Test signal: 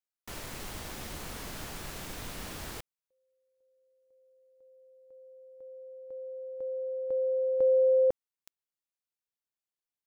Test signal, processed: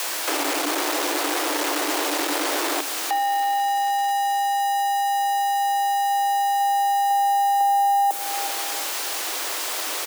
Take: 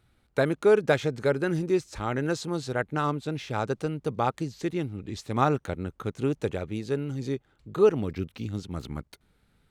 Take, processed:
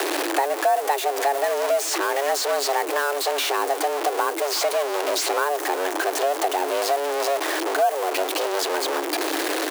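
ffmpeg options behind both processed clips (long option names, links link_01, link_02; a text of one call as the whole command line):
ffmpeg -i in.wav -filter_complex "[0:a]aeval=exprs='val(0)+0.5*0.075*sgn(val(0))':channel_layout=same,equalizer=frequency=480:width_type=o:width=2.2:gain=4,aecho=1:1:365|730|1095:0.0841|0.0353|0.0148,acrossover=split=380|7500[link_01][link_02][link_03];[link_01]acompressor=threshold=-35dB:ratio=4[link_04];[link_02]acompressor=threshold=-30dB:ratio=4[link_05];[link_03]acompressor=threshold=-36dB:ratio=4[link_06];[link_04][link_05][link_06]amix=inputs=3:normalize=0,afreqshift=280,volume=6.5dB" out.wav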